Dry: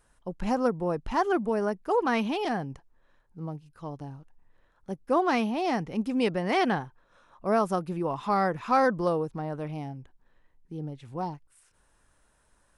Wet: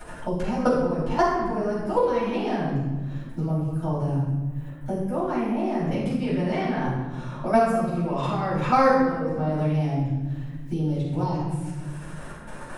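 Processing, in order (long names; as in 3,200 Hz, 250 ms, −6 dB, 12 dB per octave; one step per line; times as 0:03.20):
0:03.43–0:05.91: parametric band 4,300 Hz −14.5 dB 1.8 octaves
output level in coarse steps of 22 dB
rectangular room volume 400 cubic metres, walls mixed, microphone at 7.6 metres
multiband upward and downward compressor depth 70%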